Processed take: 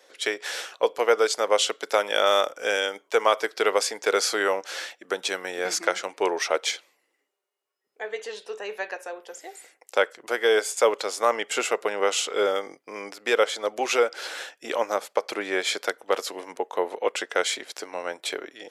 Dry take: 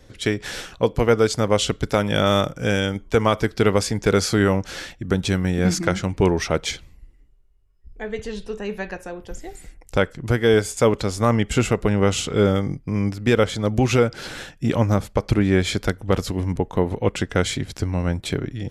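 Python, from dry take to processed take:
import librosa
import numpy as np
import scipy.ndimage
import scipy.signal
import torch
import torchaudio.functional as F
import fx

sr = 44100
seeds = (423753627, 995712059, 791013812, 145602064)

y = scipy.signal.sosfilt(scipy.signal.butter(4, 460.0, 'highpass', fs=sr, output='sos'), x)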